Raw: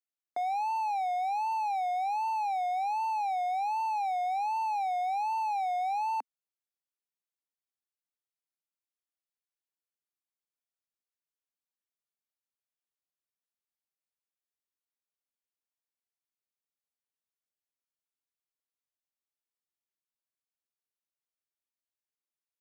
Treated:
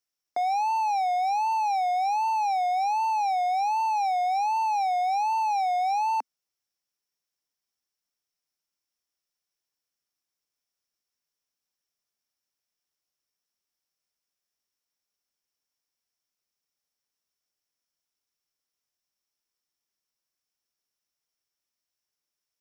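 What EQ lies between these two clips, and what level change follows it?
bell 5500 Hz +13.5 dB 0.21 oct; +5.5 dB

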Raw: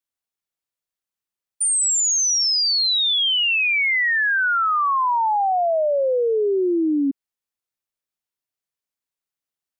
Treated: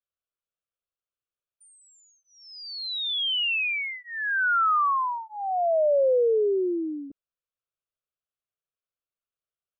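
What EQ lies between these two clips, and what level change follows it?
air absorption 340 m; fixed phaser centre 1300 Hz, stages 8; 0.0 dB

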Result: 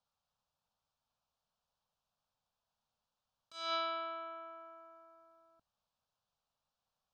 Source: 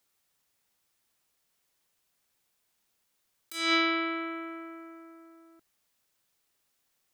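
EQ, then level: air absorption 170 m; high shelf 12000 Hz -11 dB; fixed phaser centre 840 Hz, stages 4; -1.5 dB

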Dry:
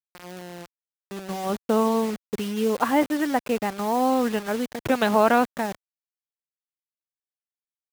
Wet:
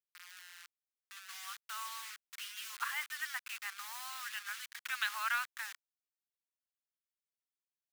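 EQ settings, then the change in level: steep high-pass 1300 Hz 36 dB/oct; -6.0 dB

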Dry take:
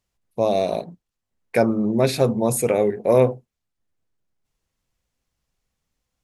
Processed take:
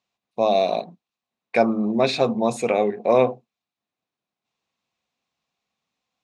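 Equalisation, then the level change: speaker cabinet 180–7100 Hz, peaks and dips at 220 Hz +4 dB, 730 Hz +8 dB, 1100 Hz +7 dB, 2500 Hz +8 dB, 3800 Hz +8 dB; -3.0 dB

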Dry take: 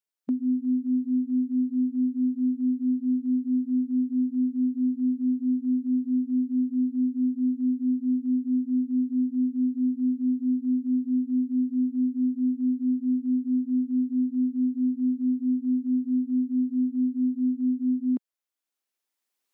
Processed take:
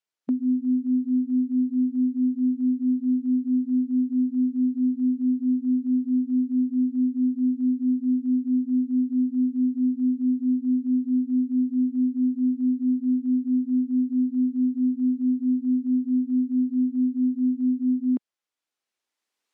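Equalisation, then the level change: air absorption 52 m; low shelf 170 Hz -6 dB; +4.0 dB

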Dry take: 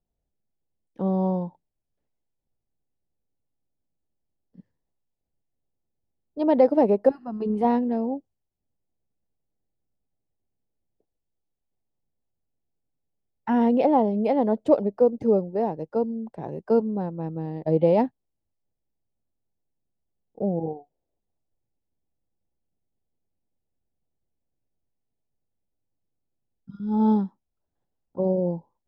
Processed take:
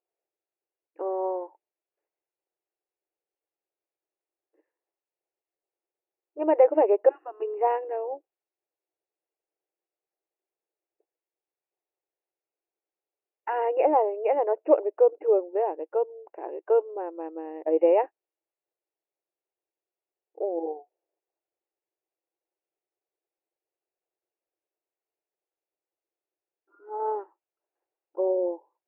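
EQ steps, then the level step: brick-wall FIR band-pass 310–2900 Hz; 0.0 dB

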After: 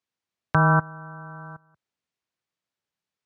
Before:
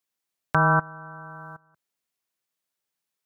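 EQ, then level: HPF 75 Hz; air absorption 88 m; low shelf 120 Hz +11.5 dB; 0.0 dB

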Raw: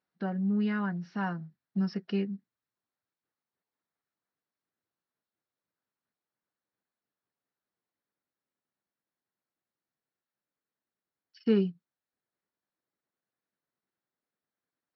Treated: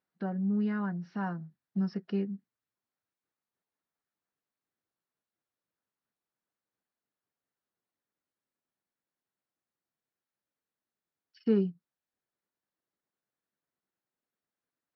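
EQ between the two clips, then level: high shelf 4800 Hz -6.5 dB; dynamic EQ 2800 Hz, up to -7 dB, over -54 dBFS, Q 0.92; -1.0 dB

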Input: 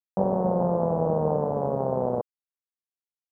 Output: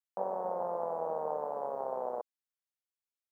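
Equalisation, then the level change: HPF 710 Hz 12 dB/oct; -4.0 dB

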